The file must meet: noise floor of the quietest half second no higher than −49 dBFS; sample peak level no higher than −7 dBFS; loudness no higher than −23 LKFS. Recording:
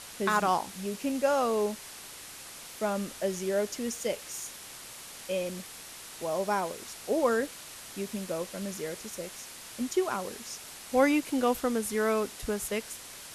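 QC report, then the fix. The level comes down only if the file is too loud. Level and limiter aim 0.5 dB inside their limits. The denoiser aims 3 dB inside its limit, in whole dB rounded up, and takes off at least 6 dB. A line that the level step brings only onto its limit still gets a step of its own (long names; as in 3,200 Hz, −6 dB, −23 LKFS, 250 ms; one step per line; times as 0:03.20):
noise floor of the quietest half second −46 dBFS: out of spec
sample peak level −11.5 dBFS: in spec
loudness −31.0 LKFS: in spec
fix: broadband denoise 6 dB, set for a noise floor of −46 dBFS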